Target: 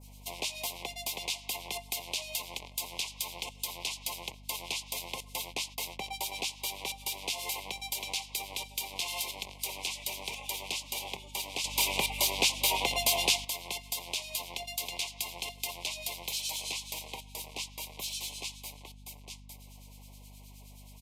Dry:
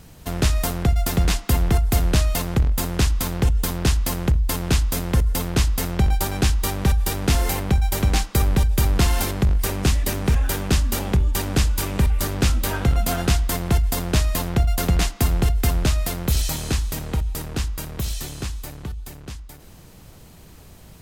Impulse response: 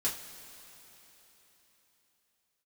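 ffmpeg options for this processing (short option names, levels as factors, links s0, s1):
-filter_complex "[0:a]highpass=860,acrossover=split=2400[s0][s1];[s0]aeval=exprs='val(0)*(1-0.7/2+0.7/2*cos(2*PI*9.5*n/s))':c=same[s2];[s1]aeval=exprs='val(0)*(1-0.7/2-0.7/2*cos(2*PI*9.5*n/s))':c=same[s3];[s2][s3]amix=inputs=2:normalize=0,asuperstop=centerf=1500:order=12:qfactor=1.4,asplit=3[s4][s5][s6];[s4]afade=t=out:st=5.46:d=0.02[s7];[s5]agate=range=0.0891:threshold=0.00891:ratio=16:detection=peak,afade=t=in:st=5.46:d=0.02,afade=t=out:st=6.18:d=0.02[s8];[s6]afade=t=in:st=6.18:d=0.02[s9];[s7][s8][s9]amix=inputs=3:normalize=0,adynamicequalizer=threshold=0.00447:dfrequency=3200:dqfactor=0.91:tfrequency=3200:tqfactor=0.91:attack=5:release=100:ratio=0.375:range=3:mode=boostabove:tftype=bell,asplit=2[s10][s11];[s11]asoftclip=type=tanh:threshold=0.0596,volume=0.335[s12];[s10][s12]amix=inputs=2:normalize=0,aeval=exprs='val(0)+0.00447*(sin(2*PI*50*n/s)+sin(2*PI*2*50*n/s)/2+sin(2*PI*3*50*n/s)/3+sin(2*PI*4*50*n/s)/4+sin(2*PI*5*50*n/s)/5)':c=same,acompressor=threshold=0.0355:ratio=3,asettb=1/sr,asplit=3[s13][s14][s15];[s13]atrim=end=11.644[s16];[s14]atrim=start=11.64:end=13.45,asetpts=PTS-STARTPTS,afade=t=in:d=0.004:c=qsin,afade=t=out:st=1.806:d=0.004:c=qsin,aeval=exprs='0.355*sin(PI/2*1.78*val(0)/0.355)':c=same[s17];[s15]atrim=start=13.446[s18];[s16][s17]acrossfade=d=0.004:c1=hsin:c2=qsin[s19];[s19][s18]acrossfade=d=0.004:c1=qsin:c2=hsin,aresample=32000,aresample=44100,volume=0.668"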